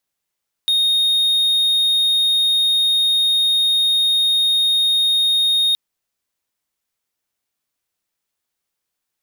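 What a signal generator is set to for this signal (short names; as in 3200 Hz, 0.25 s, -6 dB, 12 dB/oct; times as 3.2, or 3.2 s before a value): tone triangle 3710 Hz -11.5 dBFS 5.07 s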